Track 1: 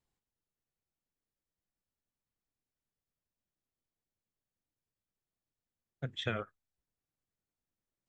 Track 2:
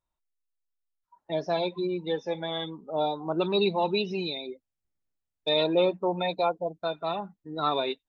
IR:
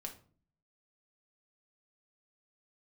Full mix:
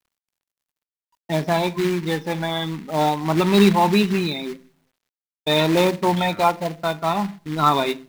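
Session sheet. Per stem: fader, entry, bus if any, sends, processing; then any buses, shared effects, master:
+2.5 dB, 0.00 s, no send, negative-ratio compressor -42 dBFS, ratio -1; auto duck -6 dB, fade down 0.65 s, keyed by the second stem
0.0 dB, 0.00 s, send -4 dB, gate with hold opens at -45 dBFS; tilt -3 dB/oct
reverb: on, RT60 0.45 s, pre-delay 5 ms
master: short-mantissa float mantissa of 2-bit; graphic EQ 125/250/500/1000/2000/4000 Hz +3/+5/-6/+8/+10/+5 dB; bit-crush 11-bit

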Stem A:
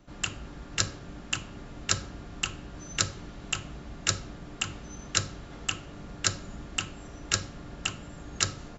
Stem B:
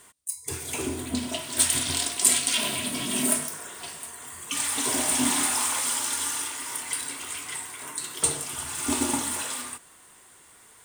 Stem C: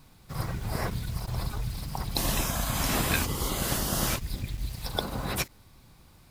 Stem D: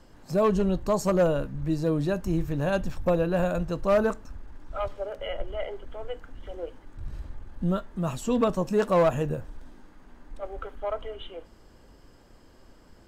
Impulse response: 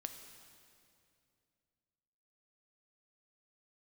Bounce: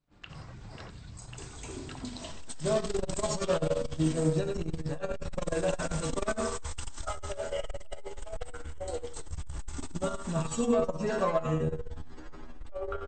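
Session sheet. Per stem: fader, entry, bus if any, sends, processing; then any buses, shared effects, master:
-14.5 dB, 0.00 s, bus A, send -12.5 dB, echo send -12.5 dB, LPF 3800 Hz 24 dB/oct
-11.0 dB, 0.90 s, no bus, no send, no echo send, bell 2600 Hz -4.5 dB 0.77 oct
-3.0 dB, 0.00 s, bus A, no send, no echo send, flange 1.5 Hz, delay 5.8 ms, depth 8 ms, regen -40%
+2.5 dB, 2.30 s, no bus, send -18 dB, echo send -4.5 dB, low shelf 70 Hz +7.5 dB; metallic resonator 77 Hz, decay 0.48 s, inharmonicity 0.002; fast leveller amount 50%
bus A: 0.0 dB, gate -56 dBFS, range -23 dB; compressor 6:1, threshold -42 dBFS, peak gain reduction 13.5 dB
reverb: on, RT60 2.5 s, pre-delay 3 ms
echo: feedback echo 88 ms, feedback 32%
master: brick-wall FIR low-pass 8500 Hz; core saturation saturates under 140 Hz

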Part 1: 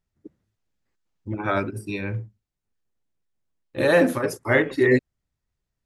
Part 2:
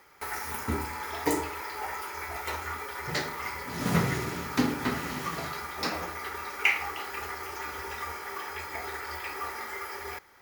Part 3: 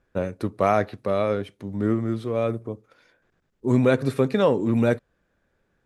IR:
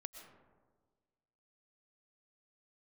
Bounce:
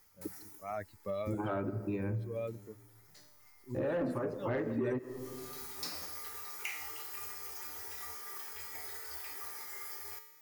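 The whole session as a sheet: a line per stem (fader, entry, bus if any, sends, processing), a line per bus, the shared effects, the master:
+0.5 dB, 0.00 s, bus A, send -6 dB, LPF 1100 Hz 12 dB/oct; soft clip -15 dBFS, distortion -14 dB
-4.0 dB, 0.00 s, bus A, no send, tone controls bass +3 dB, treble +14 dB; resonator 150 Hz, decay 0.97 s, harmonics all, mix 80%; auto duck -20 dB, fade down 0.65 s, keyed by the third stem
-3.0 dB, 0.00 s, no bus, no send, per-bin expansion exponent 2; auto swell 0.449 s
bus A: 0.0 dB, high shelf 5600 Hz +4.5 dB; limiter -21.5 dBFS, peak gain reduction 7 dB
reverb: on, RT60 1.5 s, pre-delay 80 ms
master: compressor 3:1, threshold -35 dBFS, peak gain reduction 13 dB

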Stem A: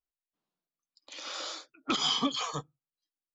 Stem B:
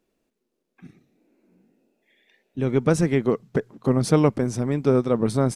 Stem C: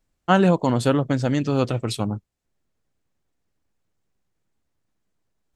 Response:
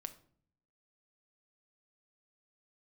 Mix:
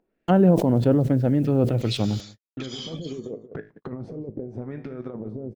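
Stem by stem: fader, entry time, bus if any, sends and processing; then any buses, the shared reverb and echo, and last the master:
2.73 s -6 dB -> 3.38 s -14.5 dB, 0.70 s, bus A, no send, echo send -22.5 dB, high shelf 3300 Hz -6.5 dB
-3.0 dB, 0.00 s, bus A, no send, echo send -18.5 dB, negative-ratio compressor -22 dBFS, ratio -0.5; resonator 53 Hz, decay 0.29 s, harmonics all, mix 60%; LFO low-pass sine 0.87 Hz 440–1800 Hz
+1.5 dB, 0.00 s, no bus, no send, echo send -23.5 dB, treble ducked by the level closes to 960 Hz, closed at -17 dBFS; bit-crush 10-bit; sustainer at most 66 dB/s
bus A: 0.0 dB, high shelf 2100 Hz +9.5 dB; compressor 12:1, threshold -29 dBFS, peak gain reduction 10 dB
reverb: off
echo: echo 0.178 s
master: gate -42 dBFS, range -59 dB; bell 1100 Hz -11 dB 0.85 oct; upward compressor, threshold -31 dBFS

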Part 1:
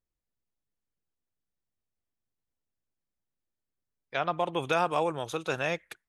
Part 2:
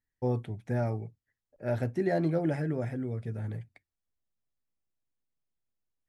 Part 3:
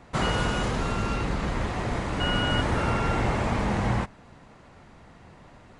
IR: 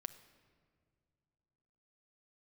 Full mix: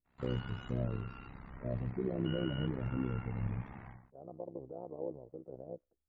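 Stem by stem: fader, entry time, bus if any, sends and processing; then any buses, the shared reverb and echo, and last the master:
-1.0 dB, 0.00 s, bus A, no send, bell 90 Hz -9.5 dB 2.8 oct; limiter -20 dBFS, peak gain reduction 6 dB
+3.0 dB, 0.00 s, bus A, no send, dry
-14.0 dB, 0.05 s, no bus, no send, notches 50/100/150/200 Hz; spectral gate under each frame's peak -25 dB strong; bell 510 Hz -8 dB 0.92 oct; auto duck -22 dB, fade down 0.25 s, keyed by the first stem
bus A: 0.0 dB, inverse Chebyshev low-pass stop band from 1900 Hz, stop band 60 dB; limiter -24.5 dBFS, peak gain reduction 8.5 dB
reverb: off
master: harmonic-percussive split percussive -10 dB; AM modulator 65 Hz, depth 75%

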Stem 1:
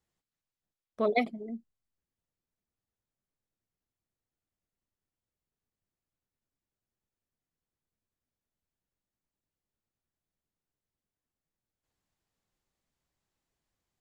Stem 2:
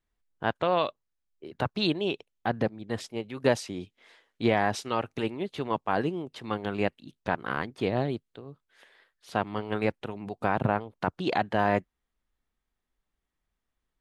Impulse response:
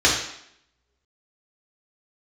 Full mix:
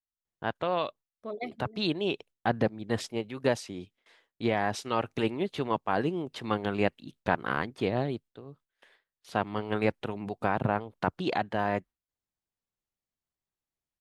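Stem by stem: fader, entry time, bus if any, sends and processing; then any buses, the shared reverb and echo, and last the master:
-10.0 dB, 0.25 s, no send, dry
-0.5 dB, 0.00 s, no send, gate with hold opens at -47 dBFS; vocal rider within 4 dB 0.5 s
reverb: off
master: dry

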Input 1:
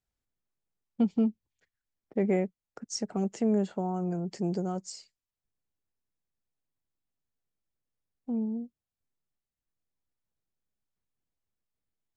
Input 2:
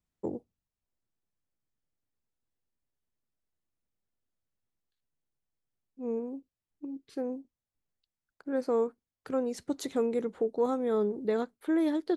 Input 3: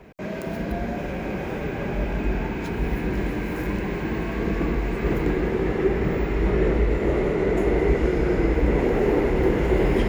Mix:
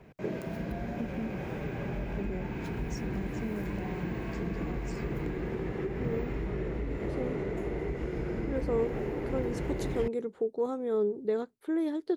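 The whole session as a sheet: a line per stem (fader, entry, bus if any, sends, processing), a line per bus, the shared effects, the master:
-10.0 dB, 0.00 s, bus A, no send, dry
-5.5 dB, 0.00 s, no bus, no send, bell 400 Hz +7.5 dB 0.4 oct
-8.5 dB, 0.00 s, bus A, no send, dry
bus A: 0.0 dB, compressor, threshold -31 dBFS, peak gain reduction 8 dB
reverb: off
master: bell 130 Hz +6.5 dB 0.83 oct

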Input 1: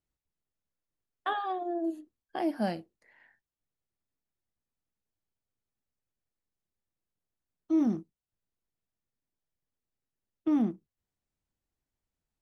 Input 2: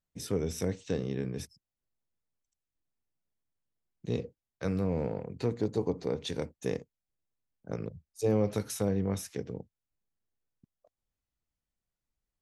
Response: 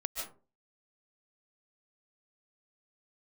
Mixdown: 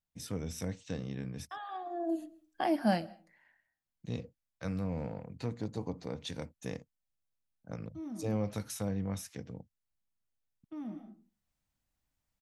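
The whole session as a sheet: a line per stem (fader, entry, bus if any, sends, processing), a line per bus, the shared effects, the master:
+3.0 dB, 0.25 s, send -21.5 dB, auto duck -22 dB, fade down 1.10 s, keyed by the second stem
-3.5 dB, 0.00 s, no send, dry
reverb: on, RT60 0.35 s, pre-delay 0.105 s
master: bell 400 Hz -10.5 dB 0.51 oct

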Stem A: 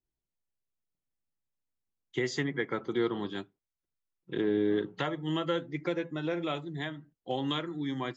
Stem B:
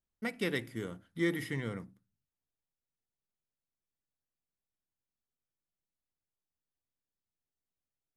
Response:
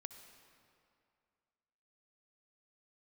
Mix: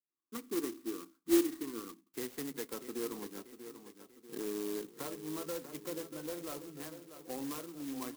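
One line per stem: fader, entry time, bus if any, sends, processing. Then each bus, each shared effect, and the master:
-15.5 dB, 0.00 s, no send, echo send -11 dB, sample leveller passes 1
+1.5 dB, 0.10 s, no send, no echo send, double band-pass 620 Hz, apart 1.8 oct; bell 460 Hz +4 dB 1.2 oct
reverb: off
echo: feedback echo 0.64 s, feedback 48%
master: speaker cabinet 180–4300 Hz, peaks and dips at 250 Hz +9 dB, 470 Hz +6 dB, 1100 Hz +8 dB, 2200 Hz +7 dB; clock jitter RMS 0.12 ms

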